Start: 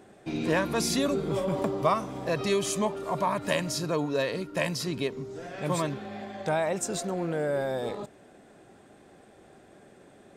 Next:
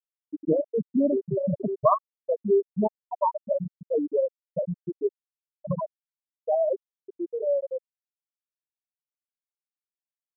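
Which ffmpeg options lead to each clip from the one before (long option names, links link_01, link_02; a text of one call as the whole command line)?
ffmpeg -i in.wav -af "afftfilt=real='re*gte(hypot(re,im),0.316)':imag='im*gte(hypot(re,im),0.316)':win_size=1024:overlap=0.75,volume=6.5dB" out.wav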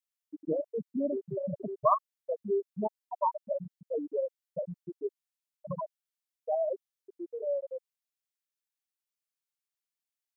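ffmpeg -i in.wav -af "tiltshelf=frequency=970:gain=-7,volume=-3.5dB" out.wav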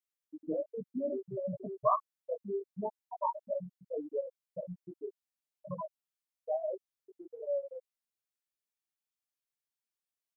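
ffmpeg -i in.wav -filter_complex "[0:a]asplit=2[link_01][link_02];[link_02]adelay=16,volume=-2.5dB[link_03];[link_01][link_03]amix=inputs=2:normalize=0,volume=-5.5dB" out.wav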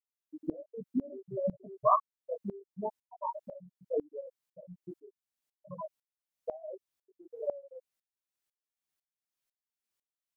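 ffmpeg -i in.wav -af "aeval=exprs='val(0)*pow(10,-23*if(lt(mod(-2*n/s,1),2*abs(-2)/1000),1-mod(-2*n/s,1)/(2*abs(-2)/1000),(mod(-2*n/s,1)-2*abs(-2)/1000)/(1-2*abs(-2)/1000))/20)':channel_layout=same,volume=7.5dB" out.wav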